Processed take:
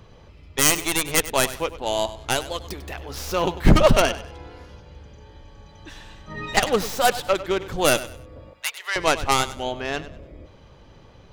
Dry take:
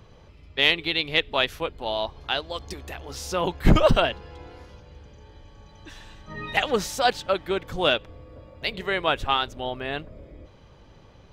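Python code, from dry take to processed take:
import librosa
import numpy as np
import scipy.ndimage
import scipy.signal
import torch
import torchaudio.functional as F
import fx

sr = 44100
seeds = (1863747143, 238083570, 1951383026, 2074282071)

y = fx.tracing_dist(x, sr, depth_ms=0.36)
y = fx.bessel_highpass(y, sr, hz=1200.0, order=4, at=(8.53, 8.96))
y = fx.echo_feedback(y, sr, ms=98, feedback_pct=30, wet_db=-15.0)
y = y * librosa.db_to_amplitude(2.5)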